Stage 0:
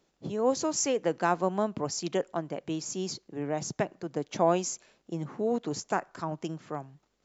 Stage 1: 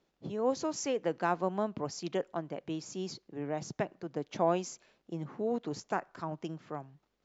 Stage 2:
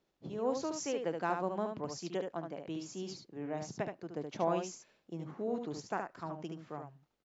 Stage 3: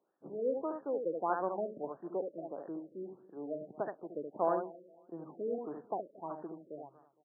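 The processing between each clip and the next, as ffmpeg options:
-af "lowpass=5.1k,volume=-4dB"
-af "aecho=1:1:73:0.531,volume=-4dB"
-filter_complex "[0:a]highpass=330,lowpass=5.5k,asplit=2[a][b];[b]adelay=230,lowpass=f=2k:p=1,volume=-20dB,asplit=2[c][d];[d]adelay=230,lowpass=f=2k:p=1,volume=0.34,asplit=2[e][f];[f]adelay=230,lowpass=f=2k:p=1,volume=0.34[g];[a][c][e][g]amix=inputs=4:normalize=0,afftfilt=real='re*lt(b*sr/1024,610*pow(1900/610,0.5+0.5*sin(2*PI*1.6*pts/sr)))':imag='im*lt(b*sr/1024,610*pow(1900/610,0.5+0.5*sin(2*PI*1.6*pts/sr)))':win_size=1024:overlap=0.75,volume=2dB"

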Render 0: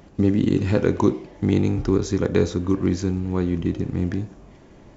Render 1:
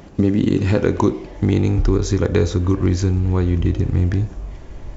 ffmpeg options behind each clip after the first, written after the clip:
-af "asubboost=boost=7.5:cutoff=73,acompressor=threshold=-22dB:ratio=2,volume=7dB"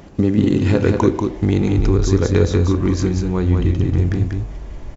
-af "aecho=1:1:189:0.596"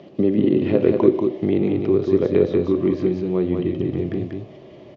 -filter_complex "[0:a]highpass=f=130:w=0.5412,highpass=f=130:w=1.3066,equalizer=f=370:t=q:w=4:g=8,equalizer=f=600:t=q:w=4:g=9,equalizer=f=900:t=q:w=4:g=-6,equalizer=f=1.5k:t=q:w=4:g=-10,equalizer=f=3.1k:t=q:w=4:g=5,lowpass=f=4.7k:w=0.5412,lowpass=f=4.7k:w=1.3066,acrossover=split=2900[a][b];[b]acompressor=threshold=-51dB:ratio=4:attack=1:release=60[c];[a][c]amix=inputs=2:normalize=0,volume=-4dB"

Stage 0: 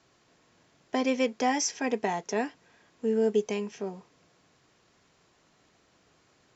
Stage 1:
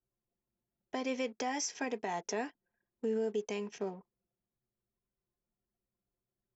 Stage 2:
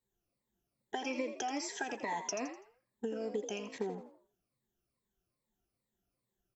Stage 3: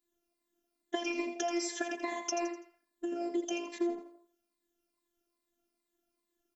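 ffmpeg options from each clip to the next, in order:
-af "anlmdn=0.00631,lowshelf=f=200:g=-6.5,alimiter=level_in=1.5dB:limit=-24dB:level=0:latency=1:release=269,volume=-1.5dB"
-filter_complex "[0:a]afftfilt=real='re*pow(10,16/40*sin(2*PI*(0.98*log(max(b,1)*sr/1024/100)/log(2)-(-2.4)*(pts-256)/sr)))':imag='im*pow(10,16/40*sin(2*PI*(0.98*log(max(b,1)*sr/1024/100)/log(2)-(-2.4)*(pts-256)/sr)))':win_size=1024:overlap=0.75,acompressor=threshold=-35dB:ratio=6,asplit=2[a][b];[b]asplit=4[c][d][e][f];[c]adelay=83,afreqshift=58,volume=-9.5dB[g];[d]adelay=166,afreqshift=116,volume=-18.6dB[h];[e]adelay=249,afreqshift=174,volume=-27.7dB[i];[f]adelay=332,afreqshift=232,volume=-36.9dB[j];[g][h][i][j]amix=inputs=4:normalize=0[k];[a][k]amix=inputs=2:normalize=0,volume=1dB"
-af "asuperstop=centerf=870:order=4:qfactor=5.7,afftfilt=real='hypot(re,im)*cos(PI*b)':imag='0':win_size=512:overlap=0.75,lowshelf=f=160:t=q:w=3:g=-7.5,volume=6.5dB"

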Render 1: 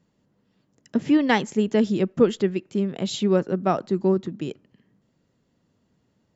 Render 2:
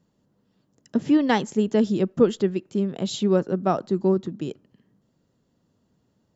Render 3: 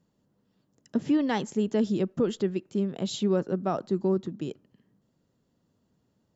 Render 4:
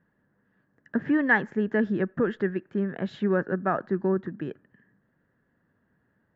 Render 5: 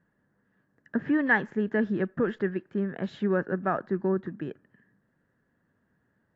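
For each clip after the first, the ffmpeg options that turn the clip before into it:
-af "equalizer=f=2.2k:w=1.9:g=-6"
-af "alimiter=limit=-13dB:level=0:latency=1:release=46,volume=-3.5dB"
-af "lowpass=f=1.7k:t=q:w=10"
-af "volume=-1.5dB" -ar 22050 -c:a aac -b:a 48k

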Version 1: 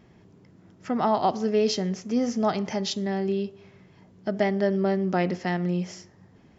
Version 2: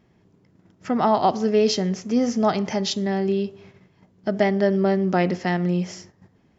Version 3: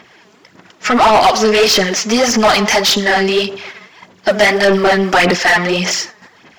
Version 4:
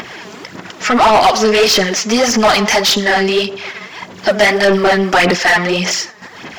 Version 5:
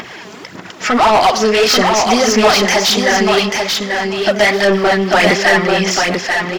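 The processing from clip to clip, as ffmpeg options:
-af "agate=range=-9dB:threshold=-51dB:ratio=16:detection=peak,volume=4dB"
-filter_complex "[0:a]aphaser=in_gain=1:out_gain=1:delay=4.8:decay=0.6:speed=1.7:type=sinusoidal,tiltshelf=f=830:g=-7,asplit=2[a][b];[b]highpass=f=720:p=1,volume=28dB,asoftclip=type=tanh:threshold=-0.5dB[c];[a][c]amix=inputs=2:normalize=0,lowpass=f=3.9k:p=1,volume=-6dB,volume=-1dB"
-af "acompressor=mode=upward:threshold=-17dB:ratio=2.5"
-af "aecho=1:1:839|1678|2517:0.631|0.107|0.0182,volume=-1dB"

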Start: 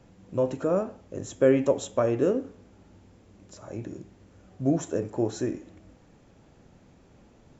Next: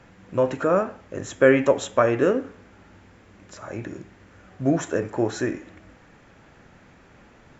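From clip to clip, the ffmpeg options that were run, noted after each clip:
-af "equalizer=f=1.7k:w=0.79:g=12.5,volume=2dB"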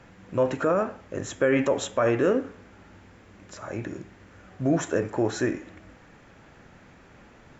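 -af "alimiter=limit=-13.5dB:level=0:latency=1:release=10"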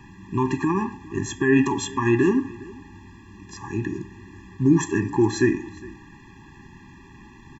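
-af "aecho=1:1:408:0.0841,afftfilt=real='re*eq(mod(floor(b*sr/1024/400),2),0)':imag='im*eq(mod(floor(b*sr/1024/400),2),0)':win_size=1024:overlap=0.75,volume=7dB"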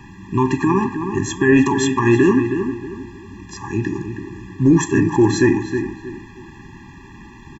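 -filter_complex "[0:a]asplit=2[a][b];[b]adelay=317,lowpass=f=2.5k:p=1,volume=-8dB,asplit=2[c][d];[d]adelay=317,lowpass=f=2.5k:p=1,volume=0.32,asplit=2[e][f];[f]adelay=317,lowpass=f=2.5k:p=1,volume=0.32,asplit=2[g][h];[h]adelay=317,lowpass=f=2.5k:p=1,volume=0.32[i];[a][c][e][g][i]amix=inputs=5:normalize=0,apsyclip=11dB,volume=-5.5dB"

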